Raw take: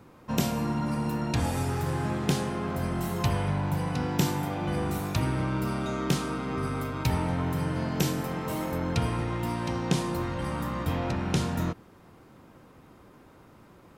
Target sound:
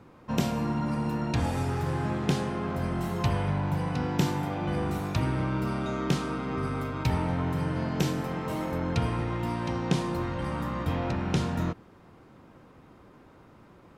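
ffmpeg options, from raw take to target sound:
ffmpeg -i in.wav -af "highshelf=frequency=7500:gain=-11.5" out.wav

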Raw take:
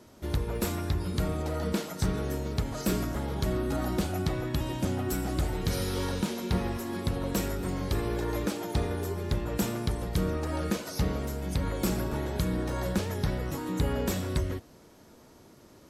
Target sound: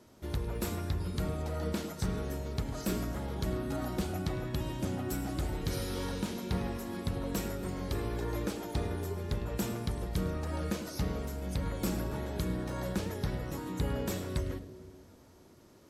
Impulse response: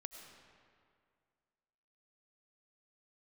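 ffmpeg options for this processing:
-filter_complex "[0:a]asplit=2[link_01][link_02];[link_02]lowshelf=frequency=610:width_type=q:width=1.5:gain=8[link_03];[1:a]atrim=start_sample=2205,adelay=104[link_04];[link_03][link_04]afir=irnorm=-1:irlink=0,volume=-12.5dB[link_05];[link_01][link_05]amix=inputs=2:normalize=0,volume=-5dB"

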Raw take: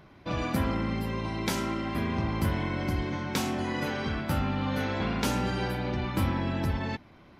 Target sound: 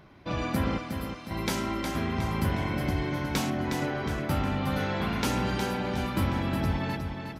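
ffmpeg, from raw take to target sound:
ffmpeg -i in.wav -filter_complex "[0:a]asettb=1/sr,asplit=3[link_01][link_02][link_03];[link_01]atrim=end=0.784[link_04];[link_02]atrim=start=0.78:end=1.31,asetpts=PTS-STARTPTS,afade=type=in:duration=0.004:curve=qsin,afade=type=out:start_time=0.526:duration=0.004:curve=qsin,aderivative[link_05];[link_03]atrim=start=1.306[link_06];[link_04][link_05]acrossfade=duration=0.004:curve1=hsin:curve2=qsin[link_07];[link_07][link_06]acrossfade=duration=0.004:curve1=qsin:curve2=hsin,asettb=1/sr,asplit=3[link_08][link_09][link_10];[link_08]atrim=end=3.504[link_11];[link_09]atrim=start=3.5:end=4.29,asetpts=PTS-STARTPTS,afade=type=in:duration=0.004:curve=qsin,afade=type=out:start_time=0.786:duration=0.004:curve=qsin,lowpass=frequency=2100:poles=1[link_12];[link_10]atrim=start=4.286[link_13];[link_11][link_12]acrossfade=duration=0.004:curve1=hsin:curve2=qsin[link_14];[link_14][link_13]acrossfade=duration=0.004:curve1=qsin:curve2=hsin,aecho=1:1:362|724|1086|1448|1810:0.473|0.218|0.1|0.0461|0.0212" out.wav

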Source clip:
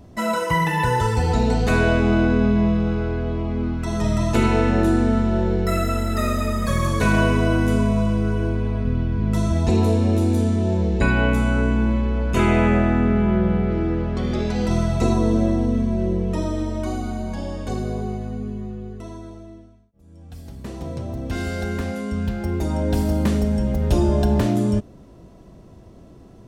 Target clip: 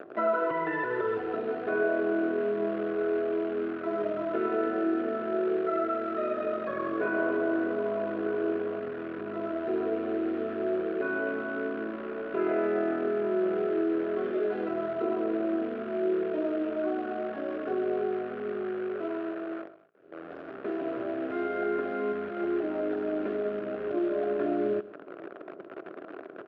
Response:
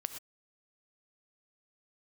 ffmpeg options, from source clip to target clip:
-filter_complex "[0:a]tiltshelf=frequency=770:gain=3.5,aecho=1:1:2.9:0.7,asettb=1/sr,asplit=3[link_01][link_02][link_03];[link_01]atrim=end=6.374[link_04];[link_02]atrim=start=6.37:end=8.8,asetpts=PTS-STARTPTS,afade=type=in:duration=0.004:curve=qsin,afade=type=out:start_time=2.426:duration=0.004:curve=qsin,acontrast=55[link_05];[link_03]atrim=start=8.796[link_06];[link_04][link_05]acrossfade=duration=0.004:curve1=hsin:curve2=qsin[link_07];[link_07][link_06]acrossfade=duration=0.004:curve1=qsin:curve2=hsin,alimiter=limit=-12.5dB:level=0:latency=1:release=16,acompressor=threshold=-26dB:ratio=2.5,acrusher=bits=7:dc=4:mix=0:aa=0.000001,highpass=frequency=230:width=0.5412,highpass=frequency=230:width=1.3066,equalizer=frequency=240:width_type=q:width=4:gain=-10,equalizer=frequency=410:width_type=q:width=4:gain=5,equalizer=frequency=600:width_type=q:width=4:gain=5,equalizer=frequency=920:width_type=q:width=4:gain=-10,equalizer=frequency=1400:width_type=q:width=4:gain=7,equalizer=frequency=2100:width_type=q:width=4:gain=-6,lowpass=frequency=2300:width=0.5412,lowpass=frequency=2300:width=1.3066,aecho=1:1:127:0.141"

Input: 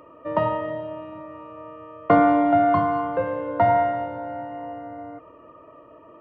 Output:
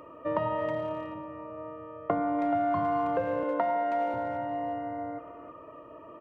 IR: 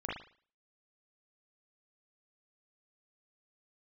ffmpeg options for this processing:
-filter_complex "[0:a]asettb=1/sr,asplit=3[link_01][link_02][link_03];[link_01]atrim=end=1.144[link_04];[link_02]atrim=start=1.14:end=2.39,asetpts=PTS-STARTPTS,afade=type=in:duration=0.004:curve=qsin,afade=type=out:start_time=1.246:duration=0.004:curve=qsin,highshelf=frequency=2200:gain=-11[link_05];[link_03]atrim=start=2.386[link_06];[link_04][link_05]acrossfade=duration=0.004:curve1=hsin:curve2=qsin[link_07];[link_07][link_06]acrossfade=duration=0.004:curve1=qsin:curve2=hsin,asettb=1/sr,asplit=3[link_08][link_09][link_10];[link_08]atrim=end=3.434[link_11];[link_09]atrim=start=3.43:end=4.14,asetpts=PTS-STARTPTS,afade=type=in:duration=0.004:curve=qsin,afade=type=out:start_time=0.706:duration=0.004:curve=qsin,highpass=frequency=210:width=0.5412,highpass=frequency=210:width=1.3066[link_12];[link_10]atrim=start=4.136[link_13];[link_11][link_12]acrossfade=duration=0.004:curve1=hsin:curve2=qsin[link_14];[link_14][link_13]acrossfade=duration=0.004:curve1=qsin:curve2=hsin,acompressor=threshold=-25dB:ratio=16,asplit=2[link_15][link_16];[link_16]adelay=320,highpass=300,lowpass=3400,asoftclip=type=hard:threshold=-26dB,volume=-11dB[link_17];[link_15][link_17]amix=inputs=2:normalize=0"

